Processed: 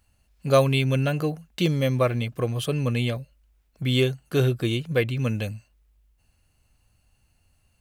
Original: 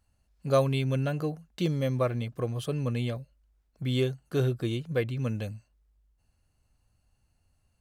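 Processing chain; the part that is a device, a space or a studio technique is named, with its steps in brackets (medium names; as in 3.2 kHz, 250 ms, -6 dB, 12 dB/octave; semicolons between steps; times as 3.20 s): presence and air boost (peaking EQ 2.6 kHz +5.5 dB 0.97 oct; treble shelf 9.3 kHz +7 dB); trim +5 dB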